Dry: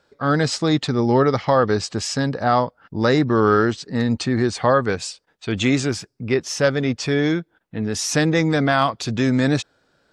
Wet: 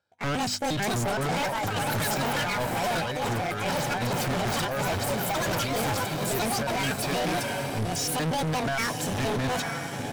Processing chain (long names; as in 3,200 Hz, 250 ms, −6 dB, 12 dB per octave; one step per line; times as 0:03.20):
pitch shifter gated in a rhythm +9 semitones, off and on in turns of 117 ms
parametric band 100 Hz +12 dB 0.31 octaves
on a send: feedback delay with all-pass diffusion 908 ms, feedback 56%, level −9 dB
on the sum: delay with pitch and tempo change per echo 627 ms, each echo +6 semitones, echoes 2
power curve on the samples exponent 1.4
high-pass filter 67 Hz 12 dB per octave
comb filter 1.3 ms, depth 41%
compressor whose output falls as the input rises −22 dBFS, ratio −0.5
hard clipping −28.5 dBFS, distortion −4 dB
mains-hum notches 50/100/150/200/250 Hz
level +3.5 dB